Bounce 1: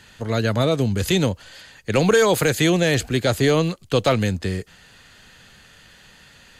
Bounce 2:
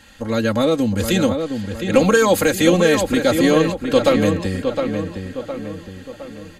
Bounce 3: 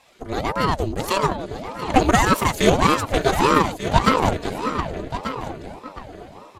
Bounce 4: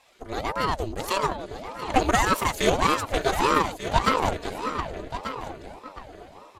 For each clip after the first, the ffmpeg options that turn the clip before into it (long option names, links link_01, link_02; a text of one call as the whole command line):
ffmpeg -i in.wav -filter_complex "[0:a]equalizer=frequency=3400:width=0.44:gain=-3.5,aecho=1:1:3.7:0.82,asplit=2[link_01][link_02];[link_02]adelay=712,lowpass=frequency=2600:poles=1,volume=-6dB,asplit=2[link_03][link_04];[link_04]adelay=712,lowpass=frequency=2600:poles=1,volume=0.48,asplit=2[link_05][link_06];[link_06]adelay=712,lowpass=frequency=2600:poles=1,volume=0.48,asplit=2[link_07][link_08];[link_08]adelay=712,lowpass=frequency=2600:poles=1,volume=0.48,asplit=2[link_09][link_10];[link_10]adelay=712,lowpass=frequency=2600:poles=1,volume=0.48,asplit=2[link_11][link_12];[link_12]adelay=712,lowpass=frequency=2600:poles=1,volume=0.48[link_13];[link_01][link_03][link_05][link_07][link_09][link_11][link_13]amix=inputs=7:normalize=0,volume=1.5dB" out.wav
ffmpeg -i in.wav -af "aeval=exprs='0.891*(cos(1*acos(clip(val(0)/0.891,-1,1)))-cos(1*PI/2))+0.0708*(cos(7*acos(clip(val(0)/0.891,-1,1)))-cos(7*PI/2))':channel_layout=same,aecho=1:1:1187:0.266,aeval=exprs='val(0)*sin(2*PI*450*n/s+450*0.75/1.7*sin(2*PI*1.7*n/s))':channel_layout=same,volume=1.5dB" out.wav
ffmpeg -i in.wav -af "equalizer=frequency=160:width=0.68:gain=-6.5,volume=-3.5dB" out.wav